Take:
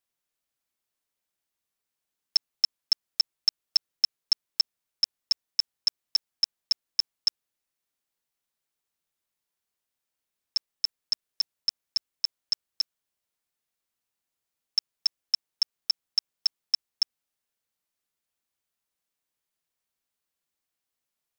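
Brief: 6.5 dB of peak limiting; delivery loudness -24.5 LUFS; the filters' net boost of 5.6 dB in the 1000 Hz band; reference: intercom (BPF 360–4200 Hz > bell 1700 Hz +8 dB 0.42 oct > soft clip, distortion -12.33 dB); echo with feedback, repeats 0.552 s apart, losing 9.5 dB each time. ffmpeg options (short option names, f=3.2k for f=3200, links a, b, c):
-af "equalizer=f=1k:t=o:g=6,alimiter=limit=-18dB:level=0:latency=1,highpass=360,lowpass=4.2k,equalizer=f=1.7k:t=o:w=0.42:g=8,aecho=1:1:552|1104|1656|2208:0.335|0.111|0.0365|0.012,asoftclip=threshold=-30dB,volume=18dB"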